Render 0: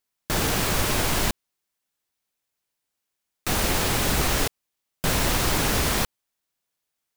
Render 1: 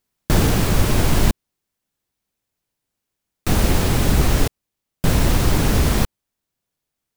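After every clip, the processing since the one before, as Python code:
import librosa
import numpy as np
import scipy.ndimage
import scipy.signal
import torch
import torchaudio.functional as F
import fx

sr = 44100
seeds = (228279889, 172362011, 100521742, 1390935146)

y = fx.rider(x, sr, range_db=10, speed_s=0.5)
y = fx.low_shelf(y, sr, hz=410.0, db=12.0)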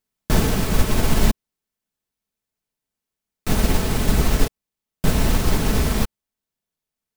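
y = x + 0.33 * np.pad(x, (int(4.6 * sr / 1000.0), 0))[:len(x)]
y = fx.upward_expand(y, sr, threshold_db=-21.0, expansion=1.5)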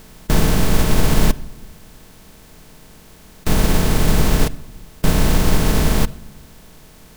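y = fx.bin_compress(x, sr, power=0.4)
y = fx.room_shoebox(y, sr, seeds[0], volume_m3=3700.0, walls='furnished', distance_m=0.52)
y = y * 10.0 ** (-1.5 / 20.0)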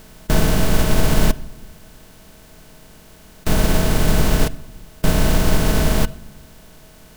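y = fx.small_body(x, sr, hz=(640.0, 1500.0, 2900.0), ring_ms=90, db=8)
y = y * 10.0 ** (-1.0 / 20.0)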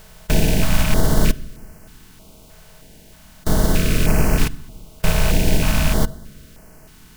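y = fx.rattle_buzz(x, sr, strikes_db=-17.0, level_db=-15.0)
y = fx.filter_held_notch(y, sr, hz=3.2, low_hz=280.0, high_hz=3600.0)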